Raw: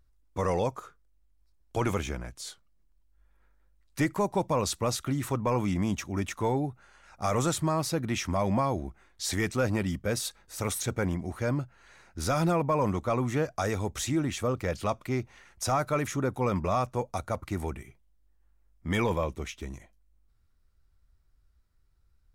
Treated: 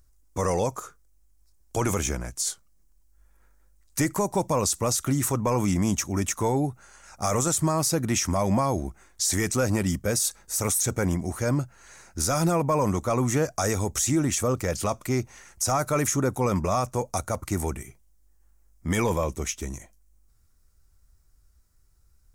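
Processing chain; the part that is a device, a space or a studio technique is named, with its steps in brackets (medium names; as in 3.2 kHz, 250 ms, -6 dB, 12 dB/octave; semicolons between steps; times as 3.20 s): over-bright horn tweeter (resonant high shelf 4.9 kHz +9 dB, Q 1.5; peak limiter -20 dBFS, peak gain reduction 8.5 dB); trim +5 dB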